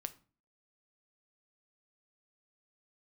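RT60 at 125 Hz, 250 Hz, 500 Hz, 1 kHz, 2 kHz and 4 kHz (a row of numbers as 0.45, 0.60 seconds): 0.50, 0.50, 0.40, 0.40, 0.35, 0.30 seconds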